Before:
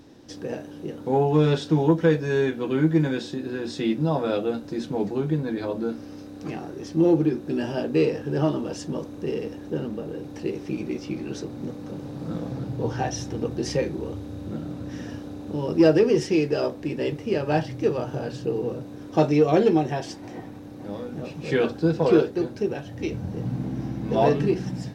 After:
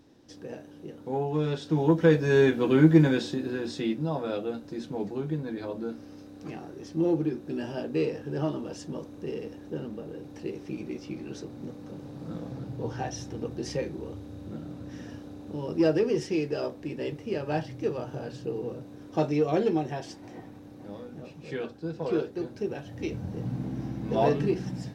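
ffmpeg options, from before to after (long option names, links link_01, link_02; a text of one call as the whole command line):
ffmpeg -i in.wav -af "volume=12.5dB,afade=type=in:start_time=1.58:duration=0.87:silence=0.281838,afade=type=out:start_time=2.95:duration=1.07:silence=0.354813,afade=type=out:start_time=20.71:duration=1.09:silence=0.421697,afade=type=in:start_time=21.8:duration=1.18:silence=0.316228" out.wav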